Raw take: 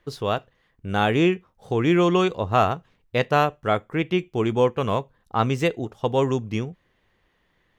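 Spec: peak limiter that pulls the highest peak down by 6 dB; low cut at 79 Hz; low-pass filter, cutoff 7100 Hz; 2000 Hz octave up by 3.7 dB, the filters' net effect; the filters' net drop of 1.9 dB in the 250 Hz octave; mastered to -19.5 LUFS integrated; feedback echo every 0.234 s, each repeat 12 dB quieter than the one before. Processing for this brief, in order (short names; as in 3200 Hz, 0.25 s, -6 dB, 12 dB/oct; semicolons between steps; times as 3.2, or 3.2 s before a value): HPF 79 Hz; LPF 7100 Hz; bell 250 Hz -3 dB; bell 2000 Hz +5 dB; limiter -10.5 dBFS; feedback echo 0.234 s, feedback 25%, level -12 dB; gain +4.5 dB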